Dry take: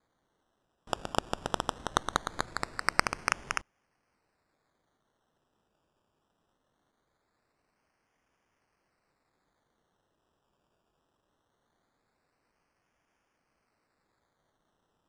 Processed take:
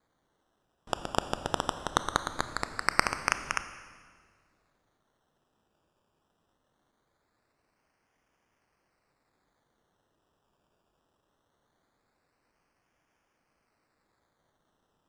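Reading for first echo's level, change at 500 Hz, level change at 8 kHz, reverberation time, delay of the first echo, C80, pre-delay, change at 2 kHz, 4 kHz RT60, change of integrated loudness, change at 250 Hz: none, +1.5 dB, +1.5 dB, 1.8 s, none, 13.0 dB, 24 ms, +1.5 dB, 1.6 s, +1.5 dB, +1.5 dB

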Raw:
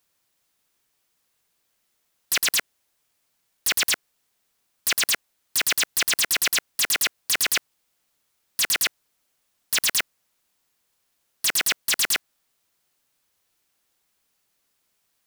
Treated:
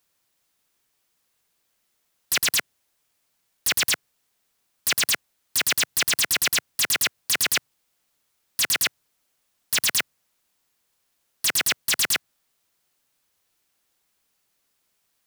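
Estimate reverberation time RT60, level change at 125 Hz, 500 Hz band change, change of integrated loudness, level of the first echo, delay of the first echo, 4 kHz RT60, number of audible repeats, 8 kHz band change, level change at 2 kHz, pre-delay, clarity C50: none, +5.5 dB, +0.5 dB, 0.0 dB, none, none, none, none, 0.0 dB, 0.0 dB, none, none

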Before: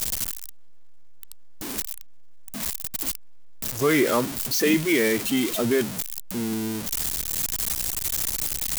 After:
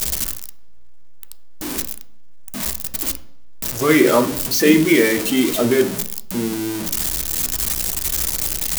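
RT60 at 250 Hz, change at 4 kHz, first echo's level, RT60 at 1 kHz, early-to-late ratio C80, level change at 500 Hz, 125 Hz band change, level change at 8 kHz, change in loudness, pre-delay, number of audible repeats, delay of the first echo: 0.75 s, +5.0 dB, none, 0.55 s, 17.0 dB, +6.5 dB, +5.5 dB, +5.0 dB, +6.0 dB, 3 ms, none, none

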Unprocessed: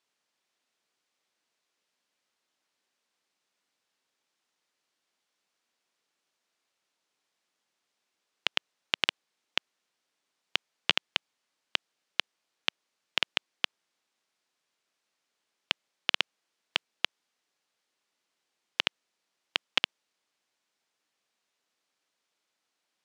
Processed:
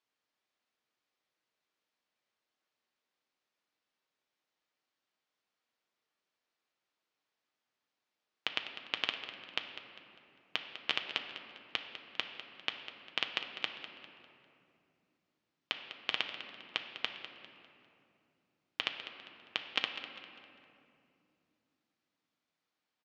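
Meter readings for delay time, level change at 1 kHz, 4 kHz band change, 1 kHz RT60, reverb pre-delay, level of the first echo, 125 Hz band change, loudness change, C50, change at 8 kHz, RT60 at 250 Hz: 0.2 s, -4.0 dB, -6.0 dB, 2.4 s, 6 ms, -13.0 dB, -3.0 dB, -6.5 dB, 6.0 dB, -11.0 dB, 4.2 s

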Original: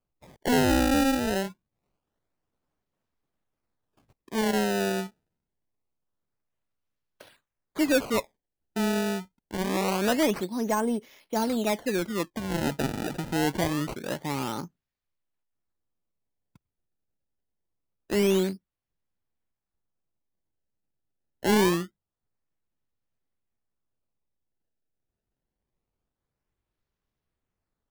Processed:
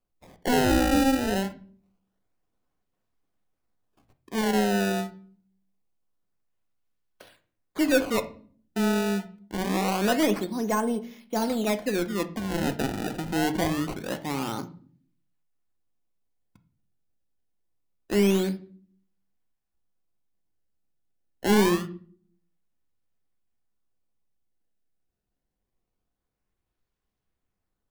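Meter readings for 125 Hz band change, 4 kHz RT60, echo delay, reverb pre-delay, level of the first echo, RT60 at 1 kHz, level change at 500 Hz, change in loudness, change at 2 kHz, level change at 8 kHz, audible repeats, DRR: +1.0 dB, 0.35 s, none, 3 ms, none, 0.40 s, +0.5 dB, +1.0 dB, +1.0 dB, 0.0 dB, none, 8.5 dB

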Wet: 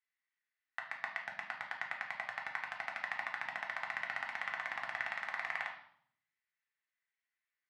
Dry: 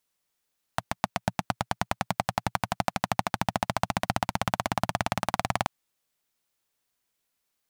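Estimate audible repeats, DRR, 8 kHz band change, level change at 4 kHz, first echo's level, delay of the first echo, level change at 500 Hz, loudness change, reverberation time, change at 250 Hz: none, -0.5 dB, under -20 dB, -14.5 dB, none, none, -19.0 dB, -9.5 dB, 0.65 s, -31.0 dB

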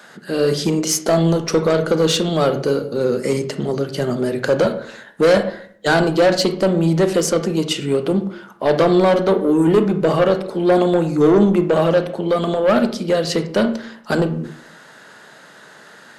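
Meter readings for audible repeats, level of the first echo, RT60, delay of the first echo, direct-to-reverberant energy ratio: none, none, 0.55 s, none, 8.0 dB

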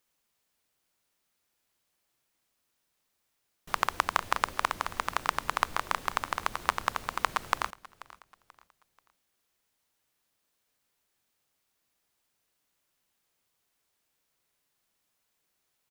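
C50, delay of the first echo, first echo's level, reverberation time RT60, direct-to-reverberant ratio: none, 0.485 s, -20.0 dB, none, none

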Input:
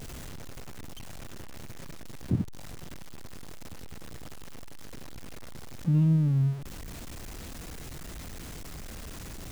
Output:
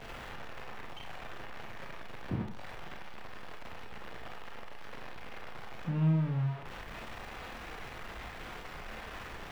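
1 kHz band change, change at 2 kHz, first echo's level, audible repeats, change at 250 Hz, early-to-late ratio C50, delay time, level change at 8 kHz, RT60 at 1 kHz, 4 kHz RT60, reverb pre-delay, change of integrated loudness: +6.5 dB, +5.5 dB, none, none, -6.0 dB, 6.5 dB, none, under -10 dB, 0.45 s, 0.30 s, 27 ms, -8.5 dB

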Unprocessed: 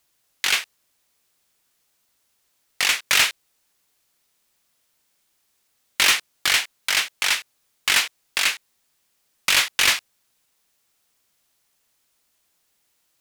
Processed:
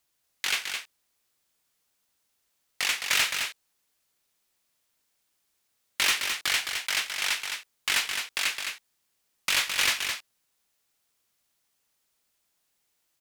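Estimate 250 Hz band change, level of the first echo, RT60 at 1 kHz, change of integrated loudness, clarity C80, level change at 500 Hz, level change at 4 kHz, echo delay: -6.0 dB, -17.5 dB, none, -6.5 dB, none, -6.0 dB, -6.0 dB, 0.134 s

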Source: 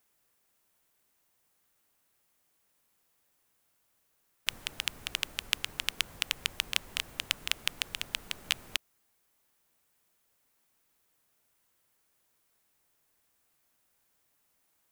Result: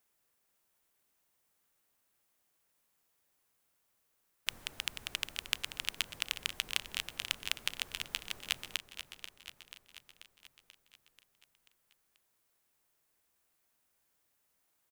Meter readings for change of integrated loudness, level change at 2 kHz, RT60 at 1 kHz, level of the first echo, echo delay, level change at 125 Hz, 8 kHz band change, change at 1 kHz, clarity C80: -4.0 dB, -3.5 dB, none, -11.0 dB, 0.486 s, -4.5 dB, -3.5 dB, -3.5 dB, none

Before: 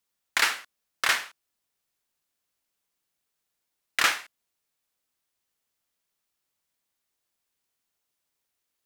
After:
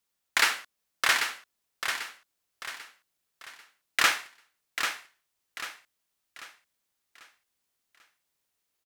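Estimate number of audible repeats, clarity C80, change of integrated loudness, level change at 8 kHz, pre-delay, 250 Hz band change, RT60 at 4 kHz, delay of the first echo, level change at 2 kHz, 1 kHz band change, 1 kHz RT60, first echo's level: 4, none, -2.5 dB, +1.0 dB, none, +1.0 dB, none, 0.792 s, +1.0 dB, +1.0 dB, none, -7.0 dB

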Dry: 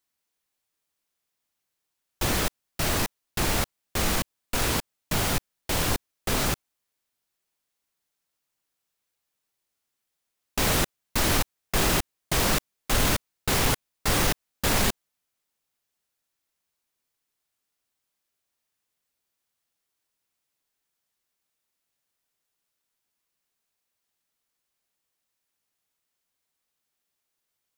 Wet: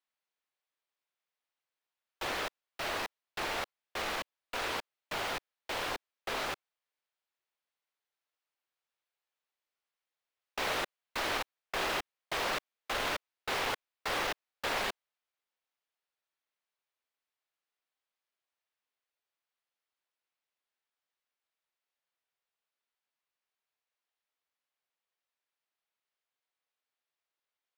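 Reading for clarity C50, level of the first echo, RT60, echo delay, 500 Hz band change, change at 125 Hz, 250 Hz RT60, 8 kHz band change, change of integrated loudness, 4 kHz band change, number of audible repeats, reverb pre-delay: none, none, none, none, -7.5 dB, -23.0 dB, none, -17.0 dB, -9.5 dB, -8.0 dB, none, none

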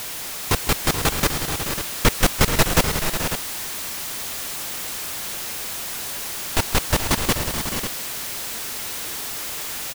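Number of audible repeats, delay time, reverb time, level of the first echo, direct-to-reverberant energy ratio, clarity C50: 4, 0.157 s, none, -15.0 dB, none, none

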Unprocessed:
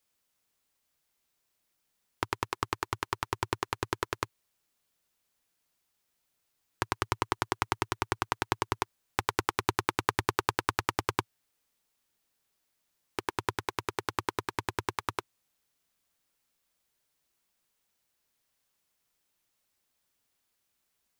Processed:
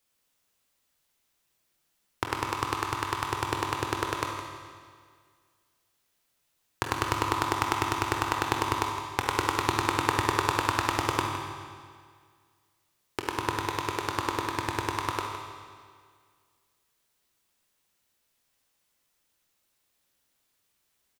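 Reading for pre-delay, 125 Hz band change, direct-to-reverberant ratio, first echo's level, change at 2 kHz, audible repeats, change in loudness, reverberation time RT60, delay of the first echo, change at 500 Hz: 21 ms, +4.5 dB, 0.5 dB, -12.0 dB, +3.5 dB, 1, +4.0 dB, 1.9 s, 0.162 s, +3.5 dB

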